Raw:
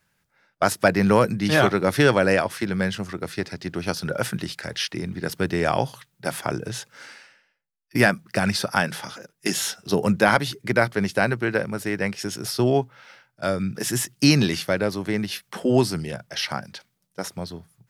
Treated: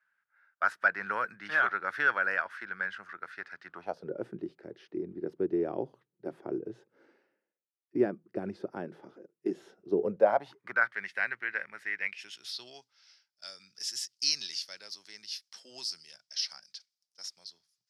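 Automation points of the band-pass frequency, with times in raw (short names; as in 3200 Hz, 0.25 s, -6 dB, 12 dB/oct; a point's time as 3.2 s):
band-pass, Q 4.4
3.66 s 1500 Hz
4.12 s 360 Hz
9.97 s 360 Hz
10.96 s 1900 Hz
11.9 s 1900 Hz
12.8 s 5100 Hz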